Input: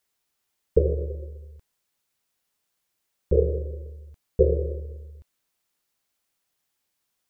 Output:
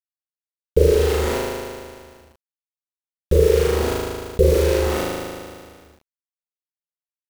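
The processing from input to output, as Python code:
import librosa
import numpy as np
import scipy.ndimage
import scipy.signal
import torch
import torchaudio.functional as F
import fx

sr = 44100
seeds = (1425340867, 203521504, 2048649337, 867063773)

y = fx.quant_dither(x, sr, seeds[0], bits=6, dither='none')
y = fx.room_flutter(y, sr, wall_m=6.5, rt60_s=1.0)
y = fx.env_flatten(y, sr, amount_pct=50)
y = y * 10.0 ** (2.0 / 20.0)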